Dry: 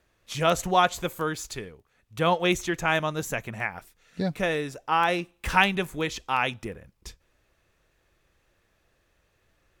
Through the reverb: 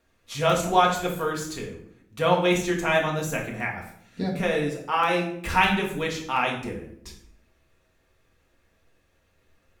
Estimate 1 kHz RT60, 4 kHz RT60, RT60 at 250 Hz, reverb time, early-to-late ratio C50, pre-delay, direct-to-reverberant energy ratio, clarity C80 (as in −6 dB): 0.60 s, 0.50 s, 1.1 s, 0.70 s, 7.0 dB, 4 ms, −1.5 dB, 10.5 dB